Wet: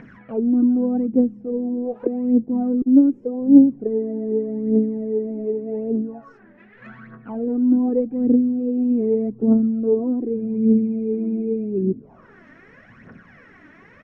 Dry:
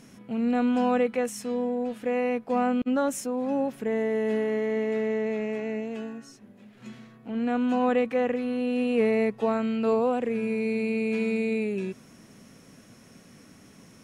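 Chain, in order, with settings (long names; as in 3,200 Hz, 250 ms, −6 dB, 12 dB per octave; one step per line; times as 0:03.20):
far-end echo of a speakerphone 370 ms, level −28 dB
phase shifter 0.84 Hz, delay 3.4 ms, feedback 65%
envelope-controlled low-pass 300–2,100 Hz down, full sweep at −25 dBFS
level +1.5 dB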